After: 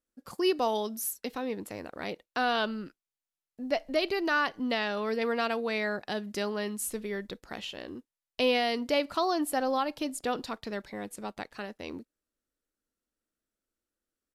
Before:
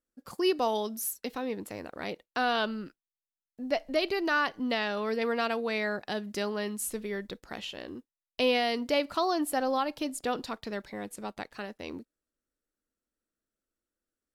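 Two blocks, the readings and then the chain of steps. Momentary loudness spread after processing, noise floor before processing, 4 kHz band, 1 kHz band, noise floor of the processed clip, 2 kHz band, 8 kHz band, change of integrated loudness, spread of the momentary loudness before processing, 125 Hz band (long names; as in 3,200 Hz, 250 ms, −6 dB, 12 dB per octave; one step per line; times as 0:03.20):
13 LU, below −85 dBFS, 0.0 dB, 0.0 dB, below −85 dBFS, 0.0 dB, 0.0 dB, 0.0 dB, 13 LU, 0.0 dB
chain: downsampling to 32,000 Hz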